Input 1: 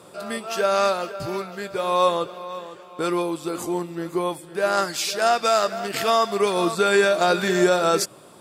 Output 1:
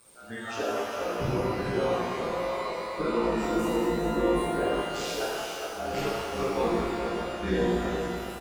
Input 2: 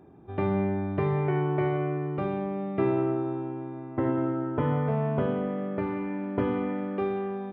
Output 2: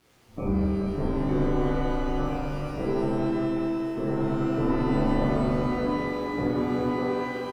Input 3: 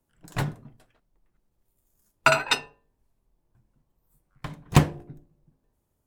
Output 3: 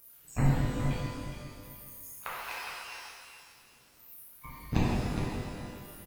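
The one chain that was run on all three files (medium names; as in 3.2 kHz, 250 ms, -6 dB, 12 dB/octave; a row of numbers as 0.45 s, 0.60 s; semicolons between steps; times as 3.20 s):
zero-crossing glitches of -19.5 dBFS; high-pass 89 Hz 6 dB/octave; spectral noise reduction 25 dB; band-stop 1.9 kHz, Q 29; inverted gate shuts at -12 dBFS, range -26 dB; compression 2:1, threshold -44 dBFS; RIAA curve playback; AM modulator 120 Hz, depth 95%; on a send: feedback delay 413 ms, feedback 24%, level -7.5 dB; on the sum: pitch-shifted reverb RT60 1.7 s, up +12 st, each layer -8 dB, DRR -8 dB; peak normalisation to -12 dBFS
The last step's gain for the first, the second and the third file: +3.0 dB, +4.0 dB, +3.0 dB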